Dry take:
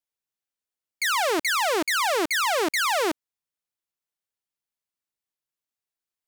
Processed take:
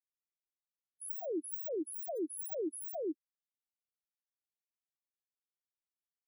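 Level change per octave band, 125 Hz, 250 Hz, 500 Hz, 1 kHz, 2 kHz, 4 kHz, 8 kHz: n/a, -8.5 dB, -12.0 dB, -28.0 dB, under -40 dB, under -40 dB, -15.0 dB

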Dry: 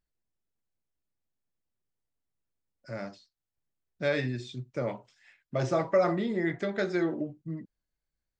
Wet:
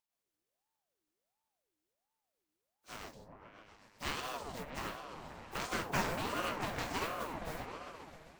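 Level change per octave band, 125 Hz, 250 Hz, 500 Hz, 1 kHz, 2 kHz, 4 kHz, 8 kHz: -11.0 dB, -12.5 dB, -13.5 dB, -1.0 dB, -3.5 dB, +2.0 dB, n/a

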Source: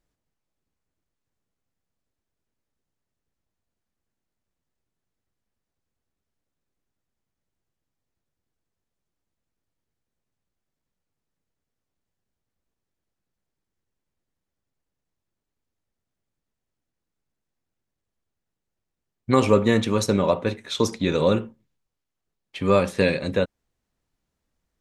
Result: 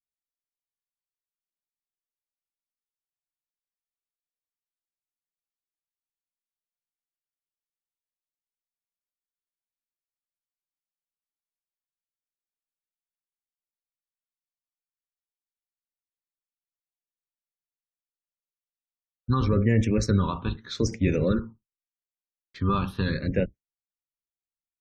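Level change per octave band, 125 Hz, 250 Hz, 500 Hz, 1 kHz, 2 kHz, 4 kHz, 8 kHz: +2.5, -2.5, -8.5, -5.5, -6.5, -7.5, -6.0 dB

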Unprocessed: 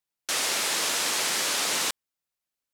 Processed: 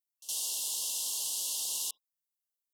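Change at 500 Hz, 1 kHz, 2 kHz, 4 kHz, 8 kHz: -23.0, -23.0, -25.5, -10.0, -5.0 dB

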